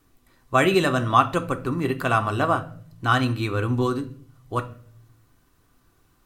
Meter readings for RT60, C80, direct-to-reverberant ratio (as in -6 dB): 0.55 s, 19.5 dB, 6.0 dB